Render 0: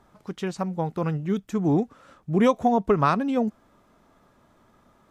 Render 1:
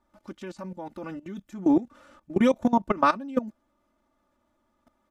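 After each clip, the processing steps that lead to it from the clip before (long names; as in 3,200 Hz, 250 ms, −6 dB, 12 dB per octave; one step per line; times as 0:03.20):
comb filter 3.4 ms, depth 99%
output level in coarse steps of 18 dB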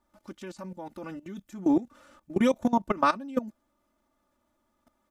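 high-shelf EQ 5,600 Hz +7.5 dB
level −2.5 dB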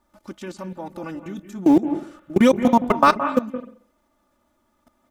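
in parallel at −12 dB: centre clipping without the shift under −27 dBFS
on the sum: convolution reverb, pre-delay 168 ms, DRR 10 dB
level +6.5 dB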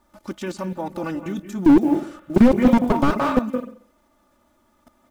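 one scale factor per block 7 bits
slew-rate limiting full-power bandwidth 60 Hz
level +5 dB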